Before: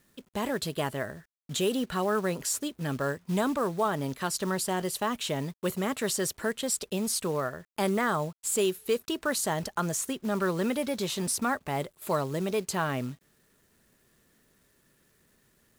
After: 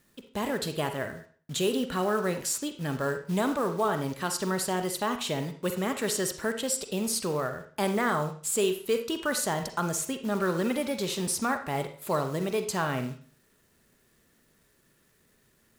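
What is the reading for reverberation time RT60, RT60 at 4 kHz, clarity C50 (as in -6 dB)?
0.45 s, 0.40 s, 9.5 dB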